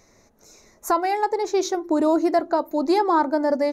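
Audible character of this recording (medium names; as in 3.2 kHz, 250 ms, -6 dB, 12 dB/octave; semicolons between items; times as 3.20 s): noise floor -58 dBFS; spectral tilt -8.5 dB/octave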